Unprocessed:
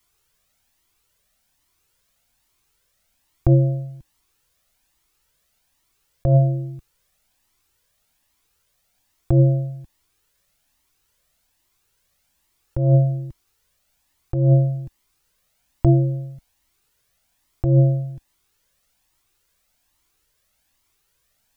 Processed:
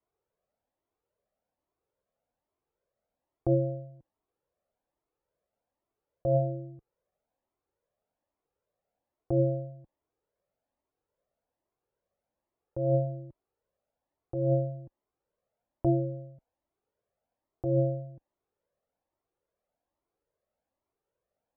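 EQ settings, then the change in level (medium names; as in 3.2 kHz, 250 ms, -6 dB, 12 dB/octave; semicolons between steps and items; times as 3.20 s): band-pass filter 550 Hz, Q 1.9; tilt EQ -2.5 dB/octave; -4.0 dB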